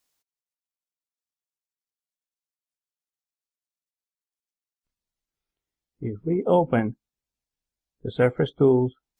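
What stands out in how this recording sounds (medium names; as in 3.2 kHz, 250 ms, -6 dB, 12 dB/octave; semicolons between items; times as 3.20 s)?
noise floor -96 dBFS; spectral tilt -5.5 dB/octave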